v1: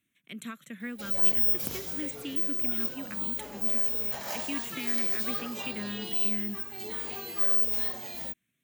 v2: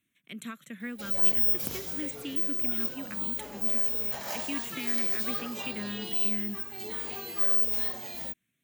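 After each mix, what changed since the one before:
nothing changed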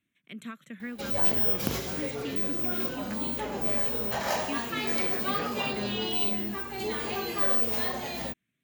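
first sound +9.5 dB
master: add high-shelf EQ 5,600 Hz −11 dB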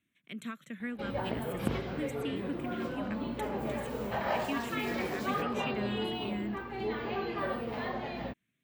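first sound: add high-frequency loss of the air 380 metres

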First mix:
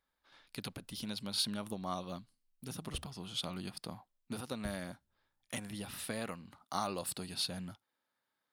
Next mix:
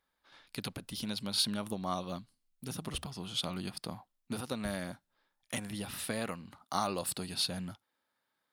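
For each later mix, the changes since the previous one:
speech +3.5 dB
reverb: off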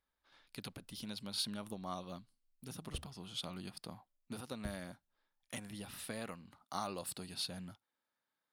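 speech −7.5 dB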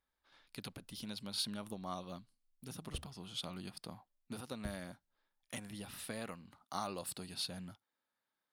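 nothing changed

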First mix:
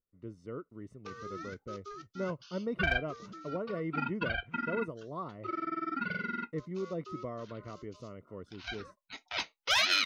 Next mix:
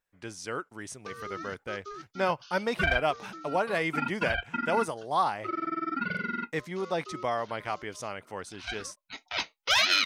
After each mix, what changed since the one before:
speech: remove moving average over 54 samples
background +3.5 dB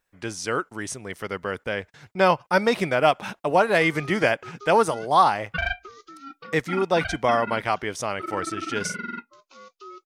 speech +9.0 dB
background: entry +2.75 s

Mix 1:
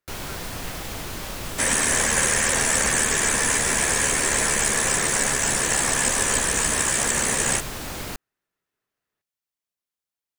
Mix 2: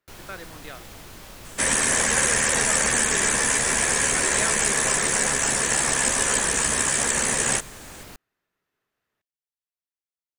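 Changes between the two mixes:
speech +5.0 dB
first sound −10.0 dB

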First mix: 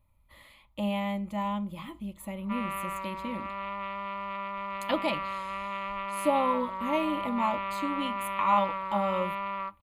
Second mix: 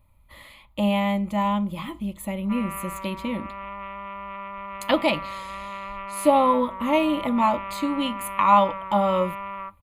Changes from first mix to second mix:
speech +8.0 dB
background: add Butterworth band-reject 5,300 Hz, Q 0.92

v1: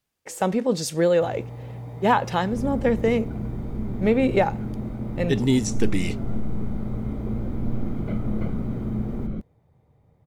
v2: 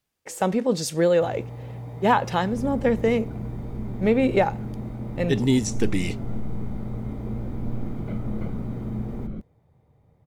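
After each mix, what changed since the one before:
second sound −3.5 dB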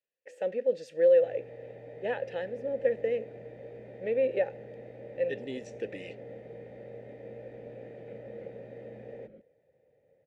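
first sound +9.0 dB
master: add formant filter e

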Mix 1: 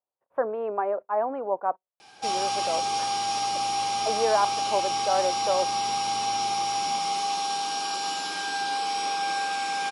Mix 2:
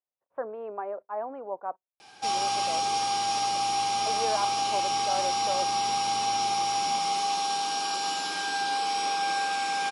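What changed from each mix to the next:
speech −7.5 dB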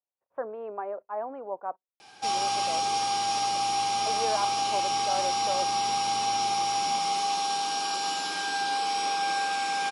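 nothing changed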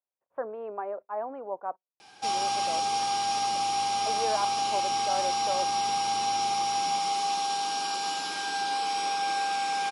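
background: send −7.5 dB

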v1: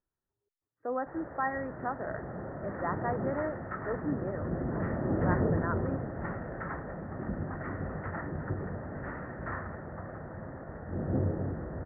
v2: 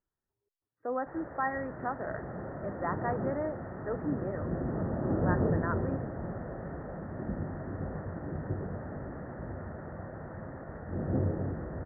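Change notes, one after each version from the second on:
second sound: muted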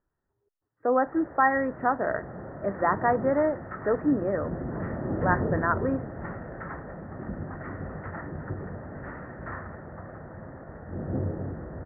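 speech +10.0 dB
second sound: unmuted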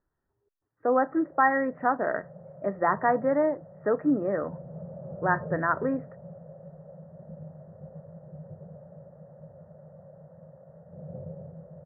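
first sound: add pair of resonant band-passes 300 Hz, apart 1.8 octaves
second sound: muted

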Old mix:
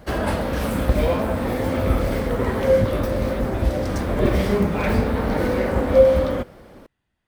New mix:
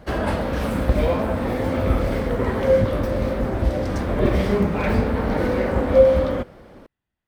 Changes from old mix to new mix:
speech −7.5 dB
master: add high-shelf EQ 6,900 Hz −8.5 dB

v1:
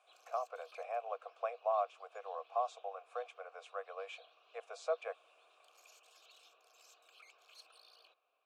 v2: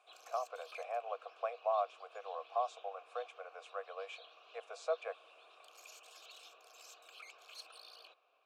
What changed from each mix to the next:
background +7.0 dB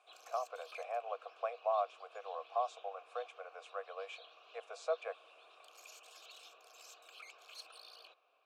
nothing changed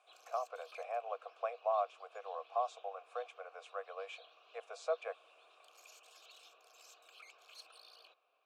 background −3.5 dB

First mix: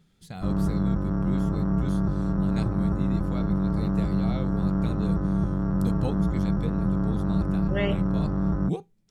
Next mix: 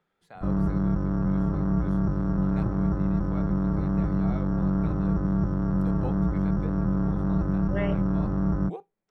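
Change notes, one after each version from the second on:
speech: add three-way crossover with the lows and the highs turned down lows −22 dB, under 410 Hz, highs −19 dB, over 2,100 Hz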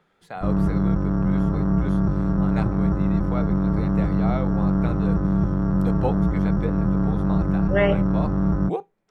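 speech +11.5 dB
background +4.0 dB

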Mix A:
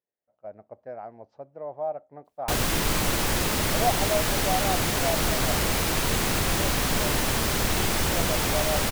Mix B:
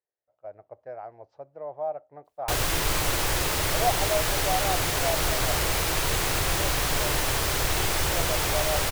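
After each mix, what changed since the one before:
master: add parametric band 220 Hz −15 dB 0.56 octaves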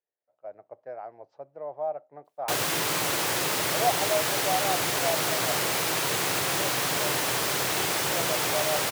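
master: add high-pass filter 140 Hz 24 dB per octave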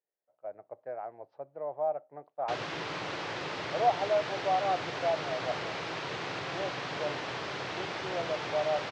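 background −7.0 dB
master: add Bessel low-pass filter 3,300 Hz, order 6

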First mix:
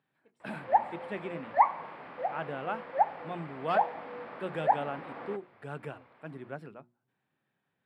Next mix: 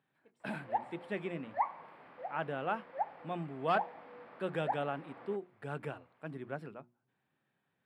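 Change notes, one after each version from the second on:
background −10.0 dB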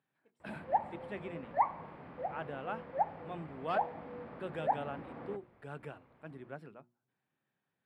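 speech −5.0 dB
background: remove high-pass filter 910 Hz 6 dB per octave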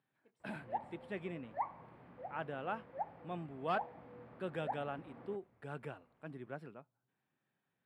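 background −9.0 dB
master: remove mains-hum notches 60/120/180/240/300/360 Hz

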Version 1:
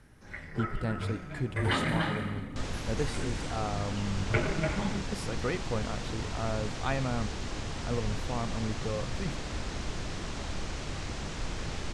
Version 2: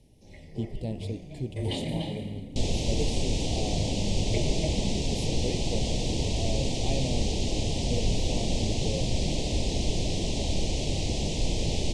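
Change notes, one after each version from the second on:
second sound +9.5 dB
master: add Chebyshev band-stop filter 640–3,000 Hz, order 2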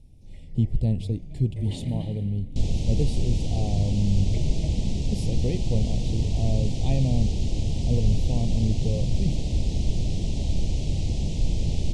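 first sound −10.0 dB
second sound −8.0 dB
master: add bass and treble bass +13 dB, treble +1 dB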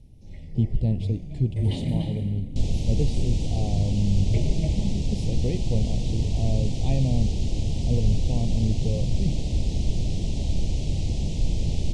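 speech: add high-frequency loss of the air 59 metres
first sound +5.5 dB

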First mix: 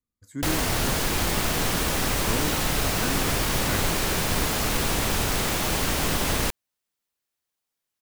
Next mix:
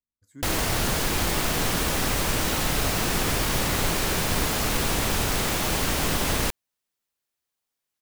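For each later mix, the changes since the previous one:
speech −11.0 dB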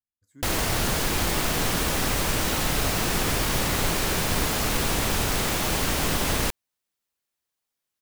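speech −5.5 dB

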